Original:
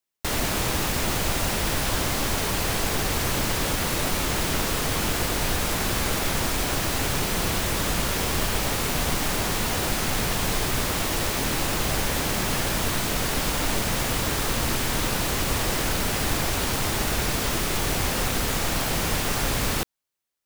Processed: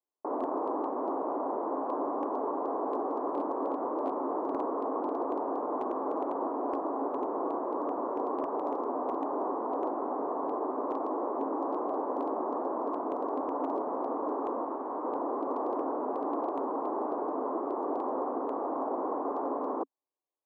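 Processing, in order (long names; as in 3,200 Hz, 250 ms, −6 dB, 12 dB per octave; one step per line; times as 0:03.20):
0:14.63–0:15.05: low-shelf EQ 470 Hz −6 dB
Chebyshev band-pass filter 270–1,100 Hz, order 4
asymmetric clip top −22.5 dBFS, bottom −22.5 dBFS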